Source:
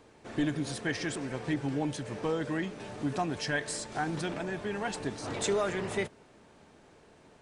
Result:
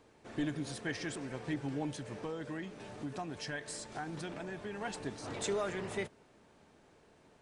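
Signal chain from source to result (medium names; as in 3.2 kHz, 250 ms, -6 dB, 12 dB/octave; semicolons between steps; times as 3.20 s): 2.14–4.81 s: compression 2:1, threshold -34 dBFS, peak gain reduction 5 dB; trim -5.5 dB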